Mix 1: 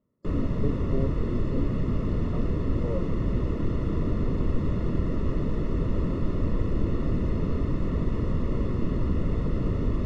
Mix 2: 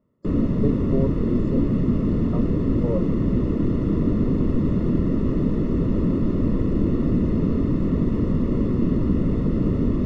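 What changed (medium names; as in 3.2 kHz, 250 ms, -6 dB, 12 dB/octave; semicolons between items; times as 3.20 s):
speech +7.0 dB; background: add peaking EQ 240 Hz +10.5 dB 1.7 oct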